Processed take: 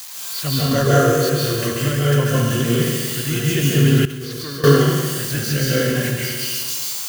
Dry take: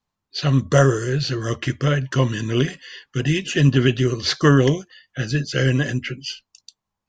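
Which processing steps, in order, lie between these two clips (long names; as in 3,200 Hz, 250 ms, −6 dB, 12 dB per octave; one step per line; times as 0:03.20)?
spike at every zero crossing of −18 dBFS
convolution reverb RT60 1.6 s, pre-delay 134 ms, DRR −7 dB
0:04.05–0:04.64: output level in coarse steps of 23 dB
level −5.5 dB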